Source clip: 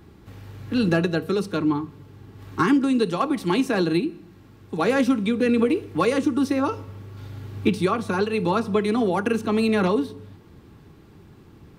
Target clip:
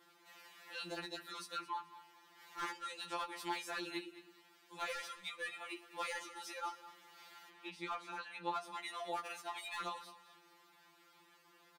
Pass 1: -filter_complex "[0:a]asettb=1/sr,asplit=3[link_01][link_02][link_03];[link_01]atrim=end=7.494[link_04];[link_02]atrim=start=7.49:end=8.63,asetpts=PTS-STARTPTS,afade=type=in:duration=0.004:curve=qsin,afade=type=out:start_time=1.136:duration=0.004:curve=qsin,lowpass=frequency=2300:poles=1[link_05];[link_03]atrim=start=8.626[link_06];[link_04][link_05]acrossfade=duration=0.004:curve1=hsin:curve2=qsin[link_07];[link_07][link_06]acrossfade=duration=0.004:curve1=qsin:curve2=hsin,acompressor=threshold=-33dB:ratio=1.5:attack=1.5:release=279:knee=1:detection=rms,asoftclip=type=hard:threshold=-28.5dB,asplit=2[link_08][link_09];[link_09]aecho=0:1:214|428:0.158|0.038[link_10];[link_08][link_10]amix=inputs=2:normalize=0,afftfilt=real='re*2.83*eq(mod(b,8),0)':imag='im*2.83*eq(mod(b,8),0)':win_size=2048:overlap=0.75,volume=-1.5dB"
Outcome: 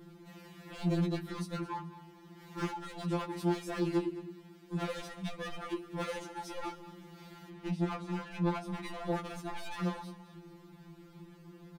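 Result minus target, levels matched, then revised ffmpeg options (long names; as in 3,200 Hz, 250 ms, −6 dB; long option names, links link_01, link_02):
1,000 Hz band −5.0 dB
-filter_complex "[0:a]asettb=1/sr,asplit=3[link_01][link_02][link_03];[link_01]atrim=end=7.494[link_04];[link_02]atrim=start=7.49:end=8.63,asetpts=PTS-STARTPTS,afade=type=in:duration=0.004:curve=qsin,afade=type=out:start_time=1.136:duration=0.004:curve=qsin,lowpass=frequency=2300:poles=1[link_05];[link_03]atrim=start=8.626[link_06];[link_04][link_05]acrossfade=duration=0.004:curve1=hsin:curve2=qsin[link_07];[link_07][link_06]acrossfade=duration=0.004:curve1=qsin:curve2=hsin,acompressor=threshold=-33dB:ratio=1.5:attack=1.5:release=279:knee=1:detection=rms,highpass=960,asoftclip=type=hard:threshold=-28.5dB,asplit=2[link_08][link_09];[link_09]aecho=0:1:214|428:0.158|0.038[link_10];[link_08][link_10]amix=inputs=2:normalize=0,afftfilt=real='re*2.83*eq(mod(b,8),0)':imag='im*2.83*eq(mod(b,8),0)':win_size=2048:overlap=0.75,volume=-1.5dB"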